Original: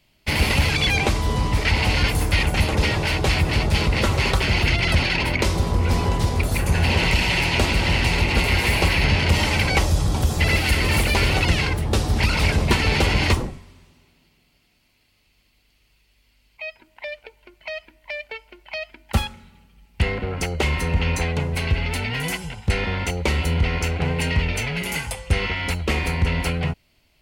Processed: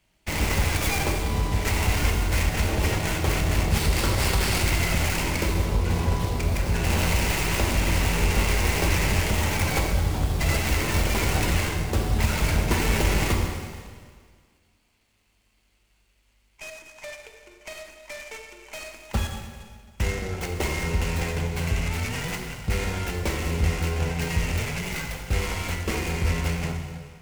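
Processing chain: tracing distortion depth 0.37 ms; 3.72–4.64 bell 4700 Hz +9 dB 0.71 oct; plate-style reverb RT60 1.8 s, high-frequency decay 0.95×, DRR 1.5 dB; noise-modulated delay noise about 3800 Hz, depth 0.035 ms; gain -6.5 dB

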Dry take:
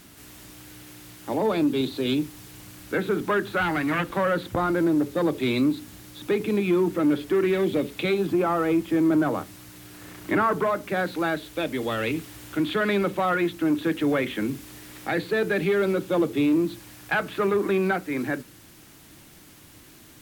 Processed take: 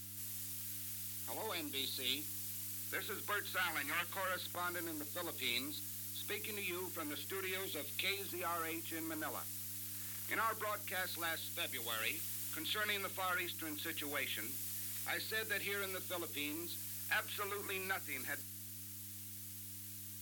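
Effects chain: differentiator; buzz 100 Hz, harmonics 3, -59 dBFS -6 dB/oct; gain +1.5 dB

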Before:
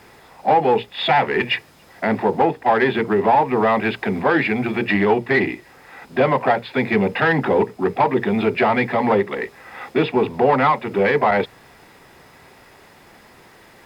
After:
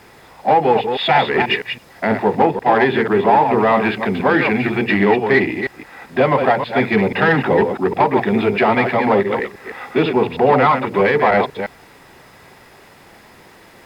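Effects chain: reverse delay 0.162 s, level -6.5 dB; gain +2 dB

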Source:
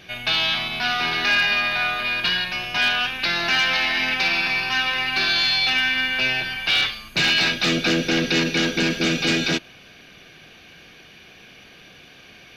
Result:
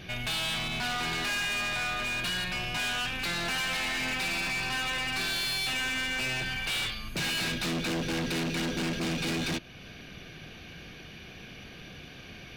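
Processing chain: low shelf 240 Hz +11.5 dB; in parallel at +0.5 dB: compressor, threshold -31 dBFS, peak gain reduction 16 dB; on the sum: hard clip -21 dBFS, distortion -7 dB; gain -8 dB

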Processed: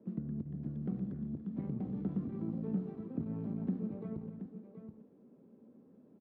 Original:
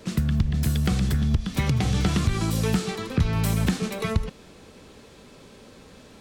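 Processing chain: tapped delay 70/103/287/726 ms -17/-18.5/-16/-10.5 dB; tube stage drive 16 dB, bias 0.5; ladder band-pass 260 Hz, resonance 45%; gain +1 dB

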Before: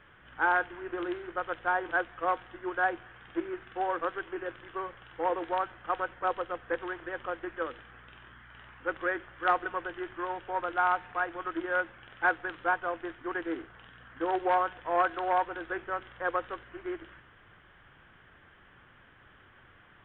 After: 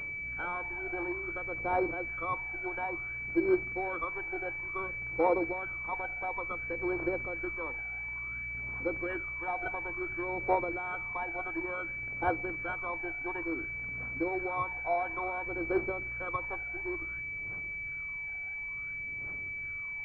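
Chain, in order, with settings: limiter -26 dBFS, peak gain reduction 10.5 dB; phaser 0.57 Hz, delay 1.4 ms, feedback 70%; pulse-width modulation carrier 2300 Hz; gain +1.5 dB

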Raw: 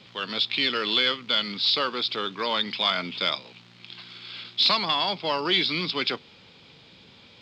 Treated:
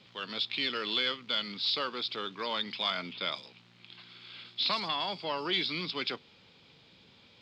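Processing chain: 3.13–5.53 bands offset in time lows, highs 0.11 s, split 5400 Hz; gain -7.5 dB

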